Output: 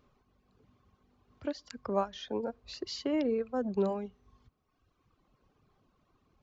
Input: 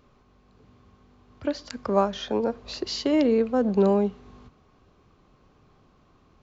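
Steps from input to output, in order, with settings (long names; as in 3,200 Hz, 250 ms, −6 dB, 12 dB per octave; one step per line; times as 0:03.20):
reverb reduction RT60 1.4 s
level −8 dB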